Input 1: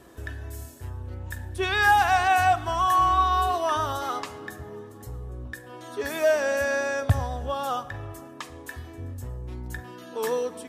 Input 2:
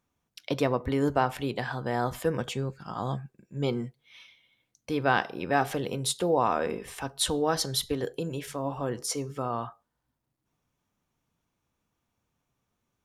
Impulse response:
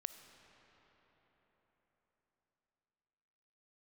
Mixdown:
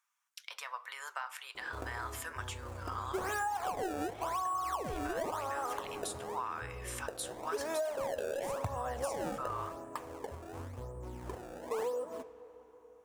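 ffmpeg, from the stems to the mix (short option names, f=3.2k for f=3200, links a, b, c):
-filter_complex "[0:a]highshelf=f=6.9k:g=-10.5,acrusher=samples=24:mix=1:aa=0.000001:lfo=1:lforange=38.4:lforate=0.93,adelay=1550,volume=-8dB,asplit=2[a][b];[b]volume=-5dB[c];[1:a]highpass=f=1.4k:w=0.5412,highpass=f=1.4k:w=1.3066,acompressor=threshold=-41dB:ratio=6,volume=3dB,asplit=2[d][e];[e]volume=-15dB[f];[2:a]atrim=start_sample=2205[g];[c][f]amix=inputs=2:normalize=0[h];[h][g]afir=irnorm=-1:irlink=0[i];[a][d][i]amix=inputs=3:normalize=0,equalizer=f=500:t=o:w=1:g=9,equalizer=f=1k:t=o:w=1:g=9,equalizer=f=4k:t=o:w=1:g=-4,equalizer=f=8k:t=o:w=1:g=5,flanger=delay=4.8:depth=6.2:regen=-79:speed=1.9:shape=triangular,acompressor=threshold=-32dB:ratio=16"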